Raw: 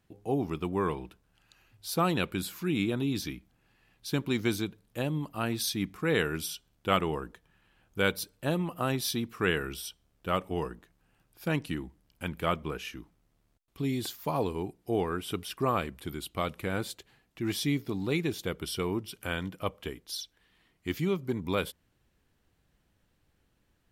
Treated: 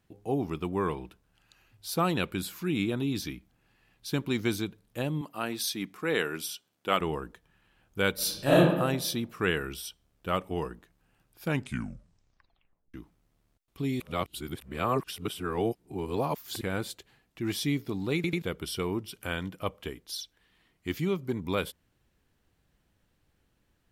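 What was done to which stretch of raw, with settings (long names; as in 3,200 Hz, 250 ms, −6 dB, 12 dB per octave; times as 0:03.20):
0:05.21–0:07.01: Bessel high-pass filter 260 Hz
0:08.14–0:08.58: thrown reverb, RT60 1 s, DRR −10.5 dB
0:11.46: tape stop 1.48 s
0:14.00–0:16.61: reverse
0:18.15: stutter in place 0.09 s, 3 plays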